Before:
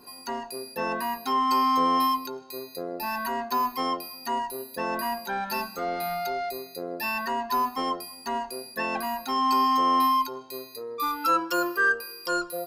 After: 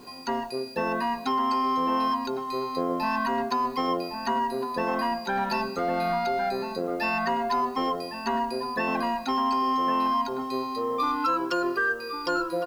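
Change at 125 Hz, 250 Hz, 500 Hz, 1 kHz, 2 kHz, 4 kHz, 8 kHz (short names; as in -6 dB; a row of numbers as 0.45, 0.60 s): +6.0, +3.0, +3.5, -0.5, -1.0, -1.5, -7.0 dB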